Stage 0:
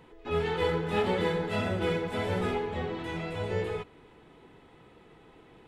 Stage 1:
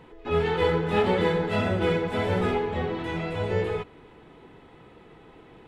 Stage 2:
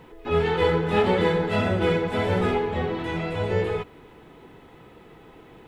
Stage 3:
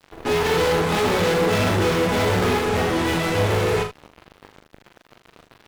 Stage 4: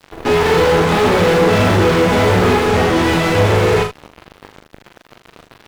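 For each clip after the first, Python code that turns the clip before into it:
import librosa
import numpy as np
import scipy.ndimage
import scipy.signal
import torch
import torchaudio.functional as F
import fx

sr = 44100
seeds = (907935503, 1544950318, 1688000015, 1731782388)

y1 = fx.high_shelf(x, sr, hz=5200.0, db=-7.0)
y1 = y1 * 10.0 ** (5.0 / 20.0)
y2 = fx.quant_dither(y1, sr, seeds[0], bits=12, dither='none')
y2 = y2 * 10.0 ** (2.0 / 20.0)
y3 = fx.fuzz(y2, sr, gain_db=35.0, gate_db=-42.0)
y3 = fx.room_early_taps(y3, sr, ms=(40, 78), db=(-6.0, -11.0))
y3 = y3 * 10.0 ** (-6.5 / 20.0)
y4 = fx.slew_limit(y3, sr, full_power_hz=170.0)
y4 = y4 * 10.0 ** (7.5 / 20.0)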